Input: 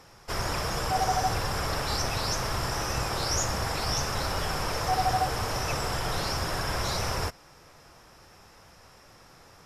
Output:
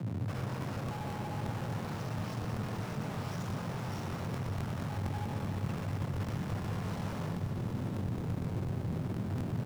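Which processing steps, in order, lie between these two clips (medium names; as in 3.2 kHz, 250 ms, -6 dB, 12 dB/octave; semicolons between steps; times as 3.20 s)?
compression 10:1, threshold -42 dBFS, peak gain reduction 20.5 dB; 4.38–6.52 s: bass shelf 110 Hz +9.5 dB; feedback delay 66 ms, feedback 52%, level -4 dB; Schmitt trigger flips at -46 dBFS; tilt EQ -2 dB/octave; frequency shift +83 Hz; crackling interface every 0.12 s, samples 1024, repeat, from 0.36 s; bit-crushed delay 193 ms, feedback 80%, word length 10-bit, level -9 dB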